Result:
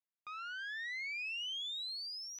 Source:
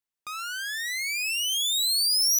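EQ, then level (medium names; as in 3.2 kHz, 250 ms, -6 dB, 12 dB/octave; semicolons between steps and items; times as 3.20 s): distance through air 240 m; tilt shelf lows -6.5 dB, about 860 Hz; treble shelf 3.8 kHz -10.5 dB; -9.0 dB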